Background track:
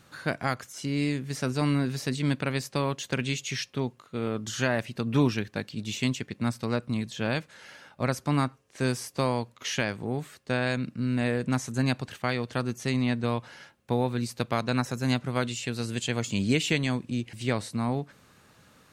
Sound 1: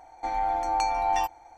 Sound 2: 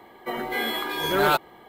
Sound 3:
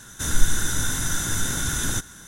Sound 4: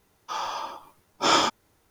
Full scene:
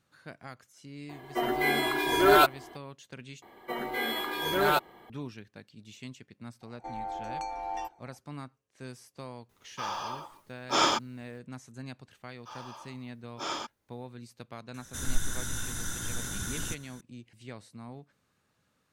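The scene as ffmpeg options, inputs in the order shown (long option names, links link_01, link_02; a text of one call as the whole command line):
ffmpeg -i bed.wav -i cue0.wav -i cue1.wav -i cue2.wav -i cue3.wav -filter_complex "[2:a]asplit=2[link_01][link_02];[4:a]asplit=2[link_03][link_04];[0:a]volume=-16.5dB[link_05];[link_01]aecho=1:1:2.9:0.8[link_06];[1:a]equalizer=frequency=400:width=1.7:gain=12[link_07];[link_05]asplit=2[link_08][link_09];[link_08]atrim=end=3.424[link_10];[link_02]atrim=end=1.68,asetpts=PTS-STARTPTS,volume=-4.5dB[link_11];[link_09]atrim=start=5.096[link_12];[link_06]atrim=end=1.68,asetpts=PTS-STARTPTS,volume=-1.5dB,afade=type=in:duration=0.004:curve=hsin,afade=type=out:start_time=1.676:duration=0.004:curve=hsin,adelay=1090[link_13];[link_07]atrim=end=1.57,asetpts=PTS-STARTPTS,volume=-12.5dB,afade=type=in:duration=0.004:curve=hsin,afade=type=out:start_time=1.566:duration=0.004:curve=hsin,adelay=6610[link_14];[link_03]atrim=end=1.9,asetpts=PTS-STARTPTS,volume=-4dB,afade=type=in:duration=0.004:curve=hsin,afade=type=out:start_time=1.896:duration=0.004:curve=hsin,adelay=9490[link_15];[link_04]atrim=end=1.9,asetpts=PTS-STARTPTS,volume=-14.5dB,afade=type=in:duration=0.004:curve=hsin,afade=type=out:start_time=1.896:duration=0.004:curve=hsin,adelay=12170[link_16];[3:a]atrim=end=2.27,asetpts=PTS-STARTPTS,volume=-10.5dB,afade=type=in:duration=0.004:curve=hsin,afade=type=out:start_time=2.266:duration=0.004:curve=hsin,adelay=14740[link_17];[link_10][link_11]acrossfade=duration=0.004:curve1=hsin:curve2=hsin[link_18];[link_18][link_12]acrossfade=duration=0.004:curve1=hsin:curve2=hsin[link_19];[link_19][link_13][link_14][link_15][link_16][link_17]amix=inputs=6:normalize=0" out.wav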